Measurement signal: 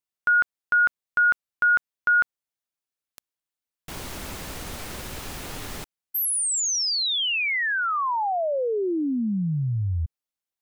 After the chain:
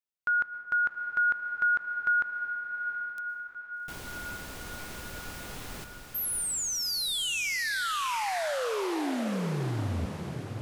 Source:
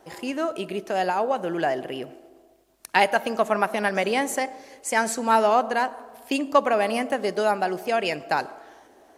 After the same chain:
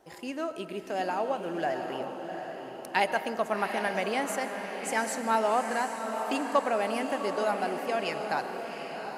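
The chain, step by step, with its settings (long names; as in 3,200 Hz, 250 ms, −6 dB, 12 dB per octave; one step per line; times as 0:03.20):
on a send: feedback delay with all-pass diffusion 762 ms, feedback 52%, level −7 dB
on the sum: dense smooth reverb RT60 1.8 s, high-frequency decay 0.5×, pre-delay 105 ms, DRR 12 dB
level −7 dB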